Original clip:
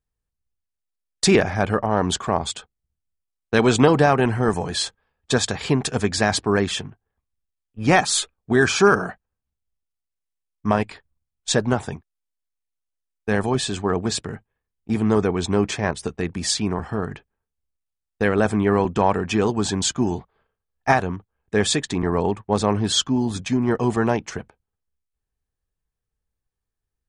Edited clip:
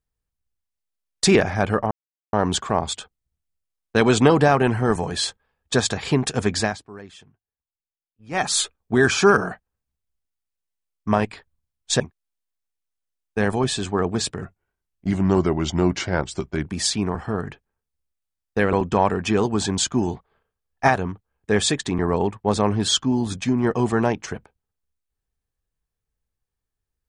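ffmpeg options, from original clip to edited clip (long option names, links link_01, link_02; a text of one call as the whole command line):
ffmpeg -i in.wav -filter_complex "[0:a]asplit=8[link_01][link_02][link_03][link_04][link_05][link_06][link_07][link_08];[link_01]atrim=end=1.91,asetpts=PTS-STARTPTS,afade=type=out:start_time=1.906:duration=0.004:curve=hsin,apad=pad_dur=0.42[link_09];[link_02]atrim=start=1.91:end=6.36,asetpts=PTS-STARTPTS,afade=type=in:duration=0.004:curve=hsin,afade=type=out:start_time=4.27:duration=0.18:silence=0.1[link_10];[link_03]atrim=start=6.36:end=7.89,asetpts=PTS-STARTPTS,volume=-20dB[link_11];[link_04]atrim=start=7.89:end=11.582,asetpts=PTS-STARTPTS,afade=type=in:duration=0.18:silence=0.1[link_12];[link_05]atrim=start=11.908:end=14.334[link_13];[link_06]atrim=start=14.33:end=16.3,asetpts=PTS-STARTPTS,asetrate=38808,aresample=44100[link_14];[link_07]atrim=start=16.296:end=18.372[link_15];[link_08]atrim=start=18.768[link_16];[link_09][link_10][link_11][link_12]concat=n=4:v=0:a=1[link_17];[link_17][link_13]acrossfade=duration=0.004:curve1=hsin:curve2=hsin[link_18];[link_18][link_14]acrossfade=duration=0.004:curve1=hsin:curve2=hsin[link_19];[link_19][link_15]acrossfade=duration=0.004:curve1=hsin:curve2=hsin[link_20];[link_20][link_16]acrossfade=duration=0.004:curve1=hsin:curve2=hsin" out.wav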